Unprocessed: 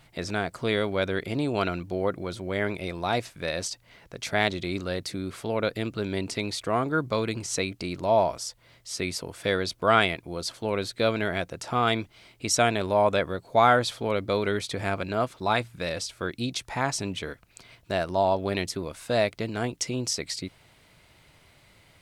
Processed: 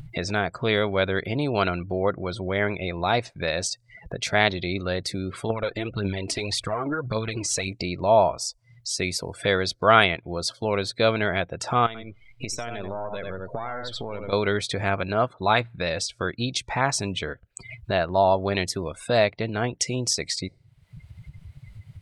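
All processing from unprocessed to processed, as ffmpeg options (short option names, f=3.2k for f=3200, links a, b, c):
-filter_complex "[0:a]asettb=1/sr,asplit=3[a][b][c];[a]atrim=end=5.504[d];[b]atrim=start=5.5:end=7.68,asetpts=PTS-STARTPTS,afade=t=in:d=0.004:c=qsin,afade=t=out:st=2.176:d=0.004:c=qsin,acompressor=threshold=-27dB:ratio=10:attack=3.2:release=140:knee=1:detection=peak,aphaser=in_gain=1:out_gain=1:delay=3.5:decay=0.57:speed=1.8:type=triangular[e];[c]atrim=start=7.676[f];[d][e]acrossfade=d=0.004:c1=hsin:c2=qsin[g];[g][f]acrossfade=d=0.004:c1=qsin:c2=hsin,asettb=1/sr,asplit=3[h][i][j];[h]atrim=end=11.864[k];[i]atrim=start=11.86:end=14.33,asetpts=PTS-STARTPTS,afade=t=in:d=0.004:c=qsin,afade=t=out:st=2.466:d=0.004:c=qsin,aeval=exprs='if(lt(val(0),0),0.447*val(0),val(0))':c=same,aecho=1:1:85:0.398,atrim=end_sample=108927,acompressor=threshold=-35dB:ratio=5:attack=3.2:release=140:knee=1:detection=peak[l];[j]atrim=start=14.326[m];[k][l]acrossfade=d=0.004:c1=hsin:c2=qsin[n];[n][m]acrossfade=d=0.004:c1=qsin:c2=hsin,afftdn=nr=33:nf=-45,equalizer=f=280:w=1.4:g=-4.5,acompressor=mode=upward:threshold=-29dB:ratio=2.5,volume=4.5dB"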